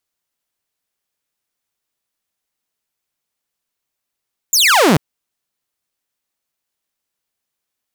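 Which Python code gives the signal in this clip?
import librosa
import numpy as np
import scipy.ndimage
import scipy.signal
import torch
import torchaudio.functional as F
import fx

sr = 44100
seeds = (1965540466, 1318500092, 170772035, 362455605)

y = fx.laser_zap(sr, level_db=-6, start_hz=7500.0, end_hz=130.0, length_s=0.44, wave='saw')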